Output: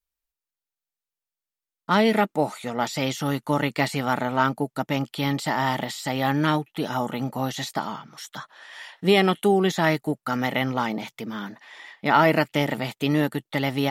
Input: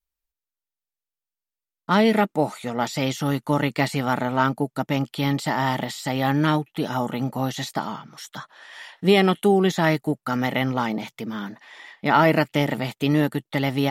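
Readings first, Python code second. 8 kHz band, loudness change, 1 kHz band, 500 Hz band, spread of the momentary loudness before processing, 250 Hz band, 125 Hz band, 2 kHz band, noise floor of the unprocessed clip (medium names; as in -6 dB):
0.0 dB, -1.5 dB, -0.5 dB, -1.0 dB, 15 LU, -2.0 dB, -3.0 dB, 0.0 dB, under -85 dBFS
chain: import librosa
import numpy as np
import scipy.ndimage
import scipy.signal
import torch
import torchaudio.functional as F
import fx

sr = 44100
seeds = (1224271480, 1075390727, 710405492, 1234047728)

y = fx.low_shelf(x, sr, hz=340.0, db=-3.5)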